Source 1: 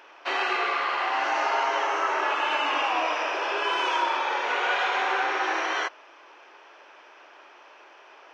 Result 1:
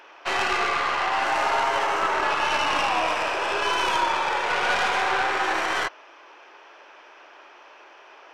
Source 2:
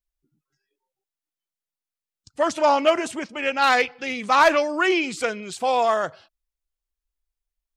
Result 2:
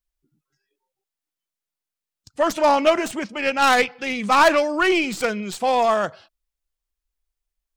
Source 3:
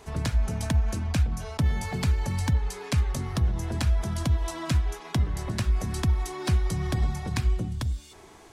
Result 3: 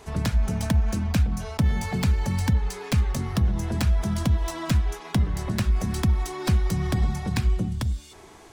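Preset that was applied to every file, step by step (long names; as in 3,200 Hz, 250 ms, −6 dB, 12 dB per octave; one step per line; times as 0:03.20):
stylus tracing distortion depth 0.07 ms
dynamic equaliser 200 Hz, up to +7 dB, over −48 dBFS, Q 4.9
in parallel at −10.5 dB: hard clipping −20 dBFS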